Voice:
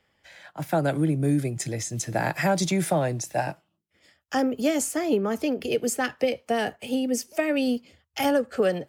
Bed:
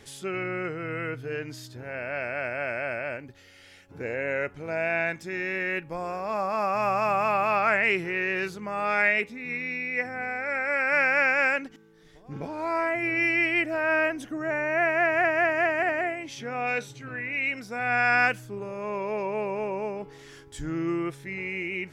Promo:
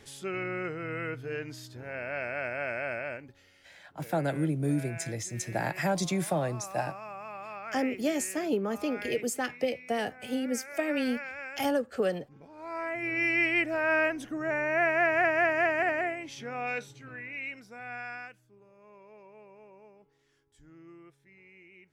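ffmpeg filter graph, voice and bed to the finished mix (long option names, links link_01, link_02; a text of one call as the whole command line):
ffmpeg -i stem1.wav -i stem2.wav -filter_complex "[0:a]adelay=3400,volume=-5.5dB[link_01];[1:a]volume=12.5dB,afade=type=out:start_time=2.95:duration=0.98:silence=0.188365,afade=type=in:start_time=12.48:duration=0.93:silence=0.16788,afade=type=out:start_time=15.85:duration=2.44:silence=0.0841395[link_02];[link_01][link_02]amix=inputs=2:normalize=0" out.wav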